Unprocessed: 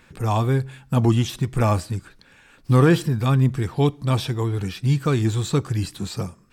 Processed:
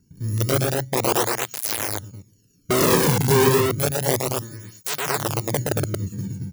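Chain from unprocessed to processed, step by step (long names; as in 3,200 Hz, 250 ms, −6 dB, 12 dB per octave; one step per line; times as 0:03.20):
samples in bit-reversed order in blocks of 64 samples
guitar amp tone stack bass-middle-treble 6-0-2
in parallel at −10.5 dB: hard clipping −29.5 dBFS, distortion −12 dB
on the sum: convolution reverb RT60 0.80 s, pre-delay 3 ms, DRR 17 dB
wrap-around overflow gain 12 dB
on a send: loudspeakers that aren't time-aligned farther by 41 metres −3 dB, 78 metres −3 dB
on the sum: through-zero flanger with one copy inverted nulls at 0.31 Hz, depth 1.7 ms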